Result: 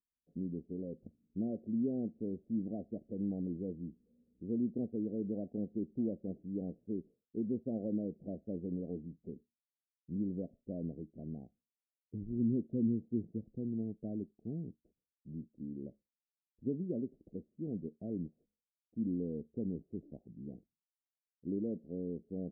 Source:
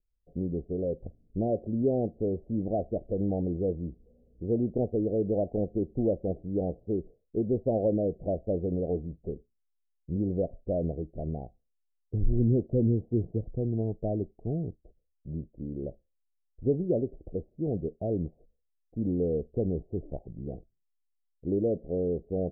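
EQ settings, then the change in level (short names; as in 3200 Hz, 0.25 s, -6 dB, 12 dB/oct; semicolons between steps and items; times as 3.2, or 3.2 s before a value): band-pass 230 Hz, Q 2.5; -3.0 dB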